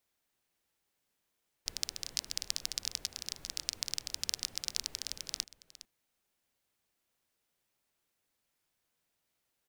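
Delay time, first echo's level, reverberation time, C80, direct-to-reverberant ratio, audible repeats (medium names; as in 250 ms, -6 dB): 411 ms, -16.5 dB, no reverb, no reverb, no reverb, 1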